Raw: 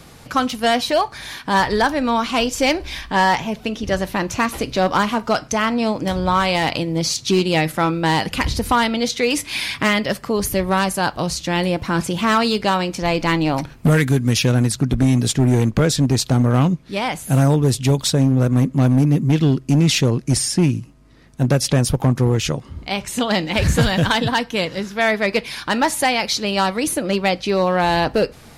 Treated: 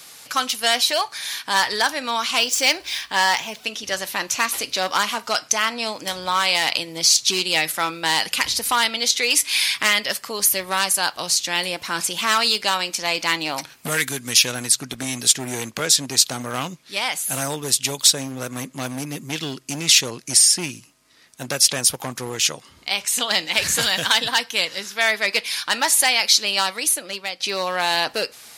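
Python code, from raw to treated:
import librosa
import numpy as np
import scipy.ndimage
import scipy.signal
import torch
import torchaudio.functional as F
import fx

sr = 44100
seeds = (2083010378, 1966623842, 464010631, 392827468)

y = fx.median_filter(x, sr, points=3, at=(2.37, 3.64))
y = fx.edit(y, sr, fx.fade_out_to(start_s=26.54, length_s=0.86, floor_db=-11.0), tone=tone)
y = fx.highpass(y, sr, hz=1100.0, slope=6)
y = fx.high_shelf(y, sr, hz=2800.0, db=11.0)
y = F.gain(torch.from_numpy(y), -1.5).numpy()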